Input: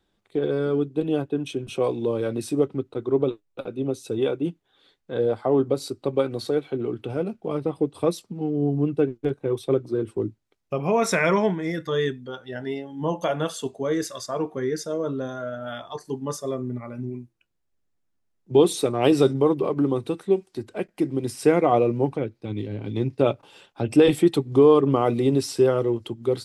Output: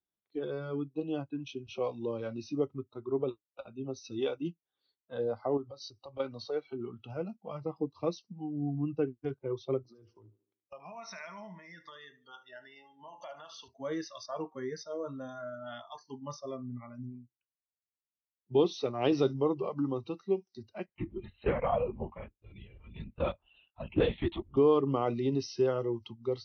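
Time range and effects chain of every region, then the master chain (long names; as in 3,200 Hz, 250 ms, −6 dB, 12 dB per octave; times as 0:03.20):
0:03.96–0:04.48: high-shelf EQ 4,500 Hz +11 dB + double-tracking delay 12 ms −12 dB
0:05.57–0:06.20: high-shelf EQ 3,400 Hz +4.5 dB + downward compressor 3 to 1, threshold −29 dBFS
0:09.83–0:13.68: high-pass filter 230 Hz 6 dB per octave + downward compressor 8 to 1, threshold −30 dBFS + repeating echo 75 ms, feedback 48%, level −14 dB
0:20.86–0:24.57: low-shelf EQ 190 Hz −11.5 dB + linear-prediction vocoder at 8 kHz whisper
whole clip: Chebyshev low-pass filter 6,100 Hz, order 10; noise reduction from a noise print of the clip's start 17 dB; high-pass filter 41 Hz; level −8.5 dB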